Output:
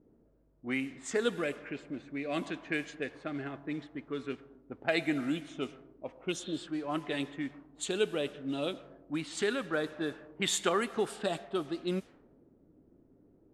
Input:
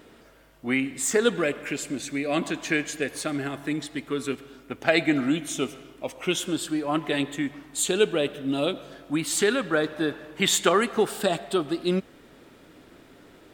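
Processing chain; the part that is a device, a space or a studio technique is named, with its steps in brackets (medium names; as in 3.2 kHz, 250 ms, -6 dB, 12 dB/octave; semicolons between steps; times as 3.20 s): cassette deck with a dynamic noise filter (white noise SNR 26 dB; level-controlled noise filter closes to 300 Hz, open at -20.5 dBFS); steep low-pass 12 kHz 48 dB/octave; spectral replace 6.34–6.57 s, 740–4200 Hz after; trim -8.5 dB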